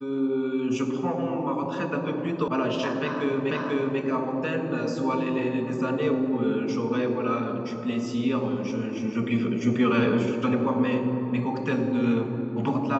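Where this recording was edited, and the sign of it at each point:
0:02.48: cut off before it has died away
0:03.51: the same again, the last 0.49 s

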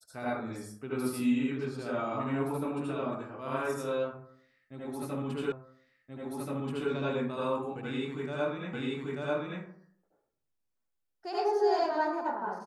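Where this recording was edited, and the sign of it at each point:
0:05.52: the same again, the last 1.38 s
0:08.73: the same again, the last 0.89 s

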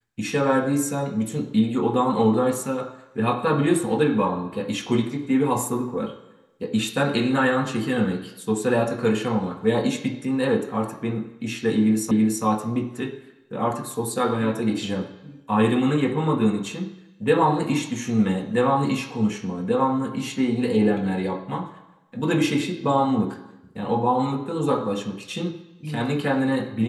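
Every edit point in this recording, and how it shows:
0:12.11: the same again, the last 0.33 s

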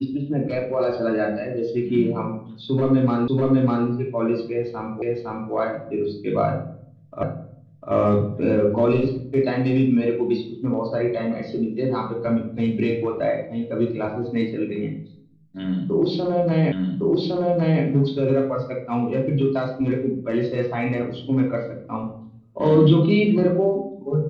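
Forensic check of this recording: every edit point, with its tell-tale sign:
0:03.28: the same again, the last 0.6 s
0:05.02: the same again, the last 0.51 s
0:07.23: the same again, the last 0.7 s
0:16.72: the same again, the last 1.11 s

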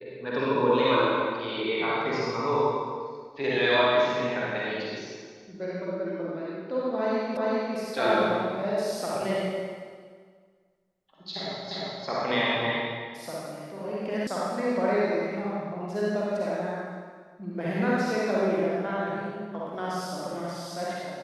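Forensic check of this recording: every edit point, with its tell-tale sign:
0:07.37: the same again, the last 0.4 s
0:11.71: the same again, the last 0.35 s
0:14.27: cut off before it has died away

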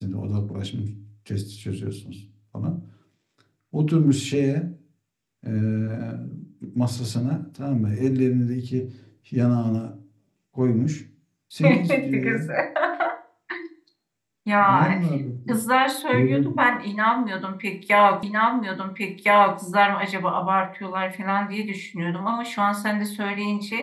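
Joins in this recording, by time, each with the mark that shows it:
0:18.23: the same again, the last 1.36 s

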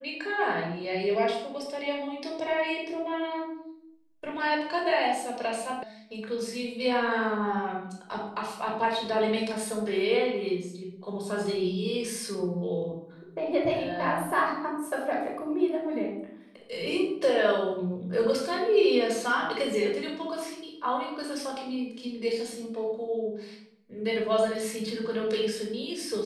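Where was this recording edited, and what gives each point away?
0:05.83: cut off before it has died away

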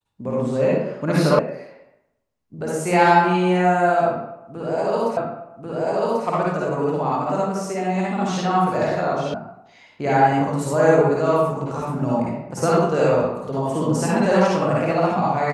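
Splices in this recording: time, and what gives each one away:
0:01.39: cut off before it has died away
0:05.17: the same again, the last 1.09 s
0:09.34: cut off before it has died away

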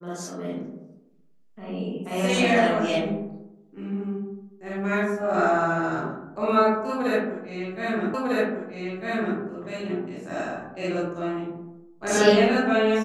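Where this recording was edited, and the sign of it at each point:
0:08.14: the same again, the last 1.25 s

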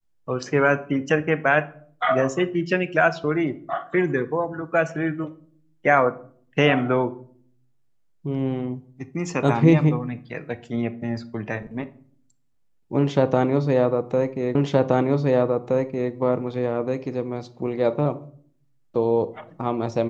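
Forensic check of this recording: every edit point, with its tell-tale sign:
0:14.55: the same again, the last 1.57 s

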